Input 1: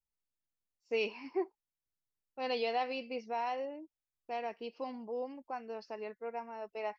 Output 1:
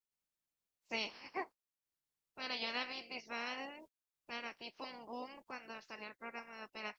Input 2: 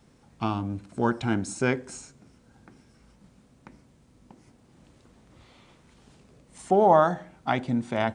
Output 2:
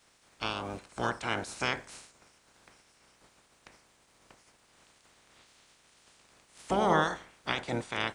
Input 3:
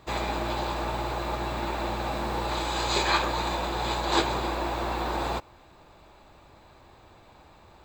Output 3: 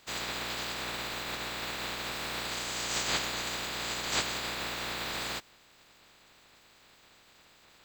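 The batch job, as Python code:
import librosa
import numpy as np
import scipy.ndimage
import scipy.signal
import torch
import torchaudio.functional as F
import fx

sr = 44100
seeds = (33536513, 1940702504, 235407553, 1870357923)

y = fx.spec_clip(x, sr, under_db=26)
y = y * 10.0 ** (-6.5 / 20.0)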